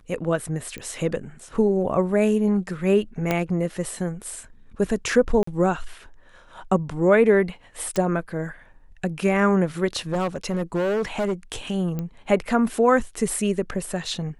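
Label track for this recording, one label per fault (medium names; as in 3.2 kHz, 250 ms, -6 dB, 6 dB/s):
0.780000	0.780000	pop -20 dBFS
3.310000	3.310000	pop -8 dBFS
5.430000	5.470000	dropout 44 ms
7.960000	7.960000	pop -12 dBFS
10.120000	11.330000	clipped -20 dBFS
11.990000	11.990000	pop -17 dBFS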